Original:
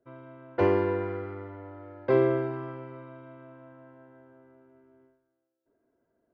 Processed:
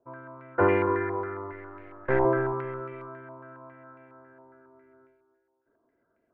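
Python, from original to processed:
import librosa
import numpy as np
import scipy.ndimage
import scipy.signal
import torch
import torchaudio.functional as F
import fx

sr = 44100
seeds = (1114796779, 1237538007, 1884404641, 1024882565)

y = fx.halfwave_gain(x, sr, db=-12.0, at=(1.52, 2.25))
y = fx.echo_feedback(y, sr, ms=278, feedback_pct=35, wet_db=-13.0)
y = fx.filter_held_lowpass(y, sr, hz=7.3, low_hz=950.0, high_hz=2300.0)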